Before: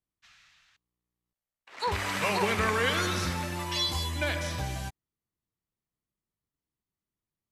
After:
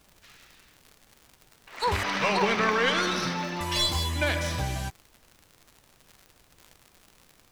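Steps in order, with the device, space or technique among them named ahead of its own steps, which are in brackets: 2.03–3.61 s: Chebyshev band-pass 120–6000 Hz, order 5; record under a worn stylus (tracing distortion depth 0.029 ms; crackle 100 per s -42 dBFS; pink noise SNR 31 dB); trim +3.5 dB

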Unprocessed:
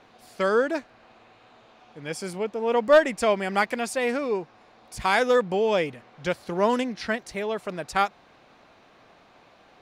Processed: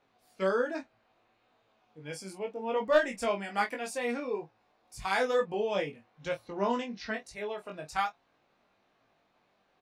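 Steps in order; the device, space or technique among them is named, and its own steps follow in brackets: double-tracked vocal (doubling 26 ms -9.5 dB; chorus 1.1 Hz, delay 18.5 ms, depth 2.5 ms); 6.47–7.14 s: low-pass 7.1 kHz 24 dB/octave; spectral noise reduction 9 dB; trim -4.5 dB

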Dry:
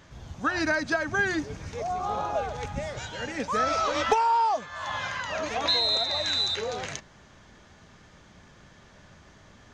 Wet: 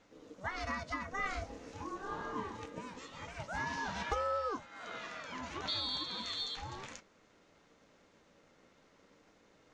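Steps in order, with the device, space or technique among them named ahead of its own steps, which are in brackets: 1.20–2.60 s: doubling 28 ms -2.5 dB; alien voice (ring modulator 380 Hz; flange 0.42 Hz, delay 9.5 ms, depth 3.1 ms, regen -59%); trim -5.5 dB

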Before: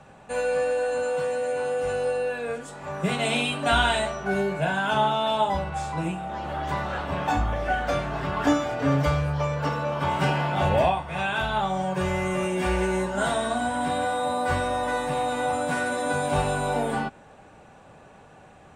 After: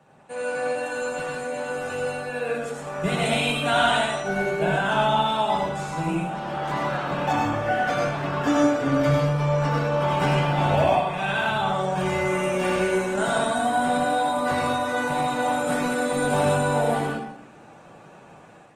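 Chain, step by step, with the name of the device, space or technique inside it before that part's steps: far-field microphone of a smart speaker (reverberation RT60 0.70 s, pre-delay 75 ms, DRR -0.5 dB; high-pass 120 Hz 24 dB/octave; level rider gain up to 6 dB; trim -6 dB; Opus 20 kbps 48 kHz)

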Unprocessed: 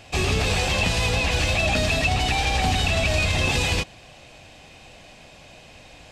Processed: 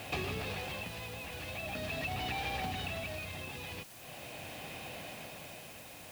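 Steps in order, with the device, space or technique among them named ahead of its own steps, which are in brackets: medium wave at night (band-pass 100–3600 Hz; compression 6:1, threshold -38 dBFS, peak gain reduction 17 dB; tremolo 0.42 Hz, depth 58%; whistle 10 kHz -69 dBFS; white noise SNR 13 dB); trim +3 dB

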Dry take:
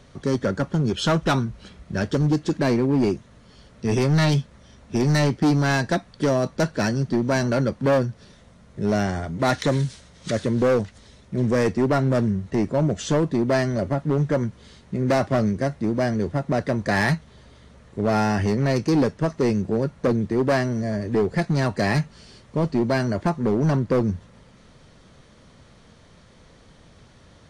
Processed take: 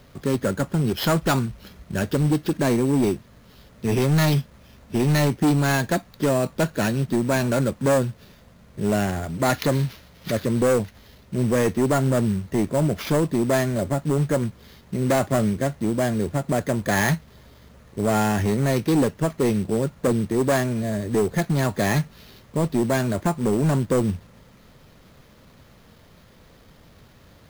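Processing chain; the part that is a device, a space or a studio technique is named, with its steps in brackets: early companding sampler (sample-rate reducer 8.3 kHz, jitter 0%; companded quantiser 6-bit)

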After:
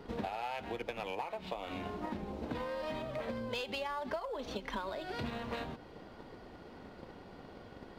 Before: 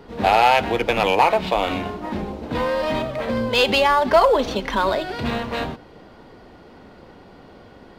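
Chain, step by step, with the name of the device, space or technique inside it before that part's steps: drum-bus smash (transient shaper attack +8 dB, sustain 0 dB; compression 10:1, threshold -28 dBFS, peak gain reduction 23.5 dB; saturation -18.5 dBFS, distortion -24 dB); trim -7 dB

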